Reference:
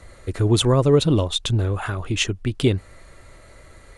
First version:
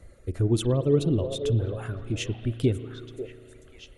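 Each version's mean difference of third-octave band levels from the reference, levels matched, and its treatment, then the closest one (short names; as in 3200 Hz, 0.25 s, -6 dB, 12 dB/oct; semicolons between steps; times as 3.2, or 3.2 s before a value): 6.0 dB: reverb removal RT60 1.1 s; ten-band EQ 1000 Hz -11 dB, 2000 Hz -5 dB, 4000 Hz -8 dB, 8000 Hz -6 dB; on a send: delay with a stepping band-pass 0.54 s, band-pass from 560 Hz, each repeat 1.4 oct, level -5 dB; on the sum: spring tank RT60 2.5 s, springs 35 ms, chirp 25 ms, DRR 12 dB; gain -3.5 dB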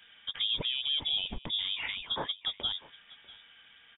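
13.5 dB: HPF 180 Hz 12 dB/oct; limiter -16.5 dBFS, peak gain reduction 11 dB; echo 0.645 s -21 dB; inverted band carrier 3600 Hz; gain -6.5 dB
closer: first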